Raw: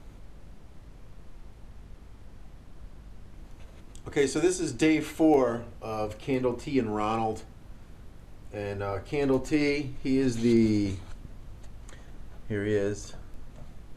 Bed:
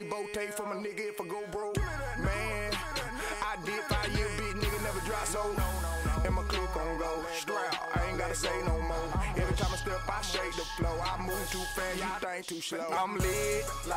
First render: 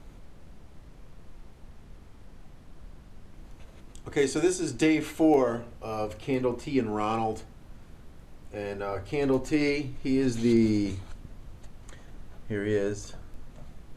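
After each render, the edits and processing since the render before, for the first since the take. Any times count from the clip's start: de-hum 50 Hz, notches 2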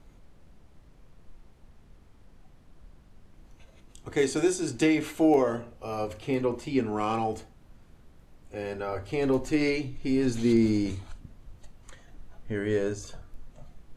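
noise print and reduce 6 dB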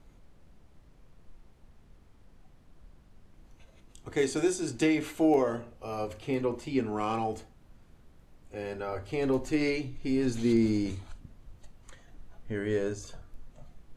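trim -2.5 dB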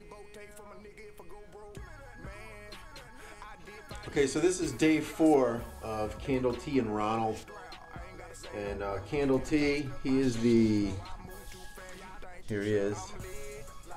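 add bed -14 dB

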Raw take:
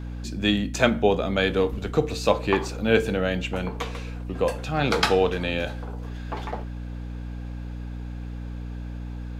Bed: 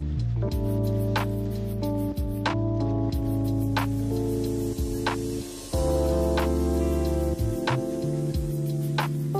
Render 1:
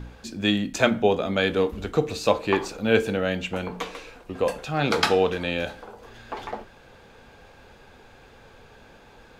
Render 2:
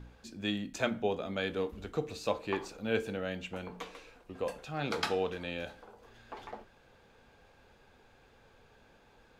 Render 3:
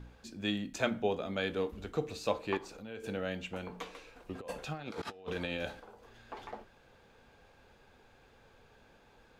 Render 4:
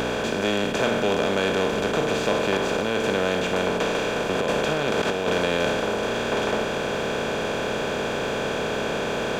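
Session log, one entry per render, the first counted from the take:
de-hum 60 Hz, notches 5
trim -11.5 dB
2.57–3.04 s: compression 3:1, threshold -45 dBFS; 4.16–5.80 s: compressor with a negative ratio -39 dBFS, ratio -0.5
spectral levelling over time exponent 0.2; waveshaping leveller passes 1

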